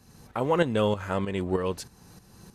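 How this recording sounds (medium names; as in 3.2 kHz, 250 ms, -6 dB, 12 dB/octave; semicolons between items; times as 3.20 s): tremolo saw up 3.2 Hz, depth 65%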